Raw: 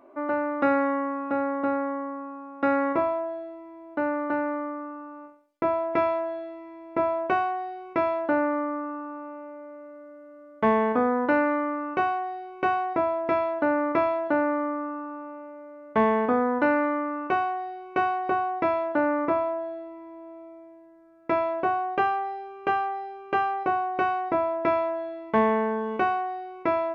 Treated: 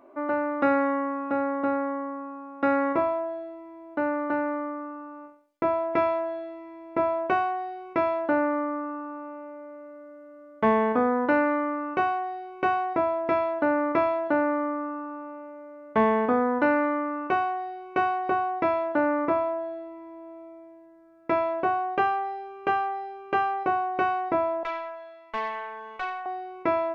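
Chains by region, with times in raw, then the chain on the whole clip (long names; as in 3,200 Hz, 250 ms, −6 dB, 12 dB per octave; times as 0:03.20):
0:24.63–0:26.26: high-pass filter 970 Hz + tube saturation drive 22 dB, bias 0.55
whole clip: no processing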